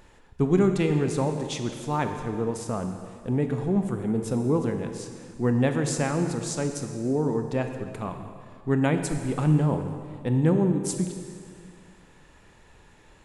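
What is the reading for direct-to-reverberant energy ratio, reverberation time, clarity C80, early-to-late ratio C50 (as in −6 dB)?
6.0 dB, 2.0 s, 7.5 dB, 7.0 dB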